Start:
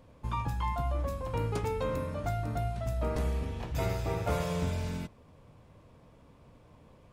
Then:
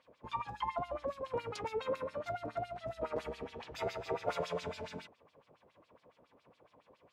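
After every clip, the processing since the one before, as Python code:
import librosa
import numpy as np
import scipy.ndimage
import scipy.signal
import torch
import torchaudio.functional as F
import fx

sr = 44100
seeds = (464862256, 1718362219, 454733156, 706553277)

y = fx.filter_lfo_bandpass(x, sr, shape='sine', hz=7.2, low_hz=410.0, high_hz=4600.0, q=1.9)
y = y * librosa.db_to_amplitude(3.5)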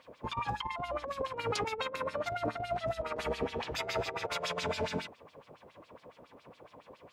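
y = fx.over_compress(x, sr, threshold_db=-40.0, ratio=-0.5)
y = y * librosa.db_to_amplitude(7.0)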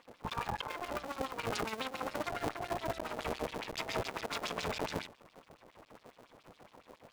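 y = fx.cycle_switch(x, sr, every=2, mode='muted')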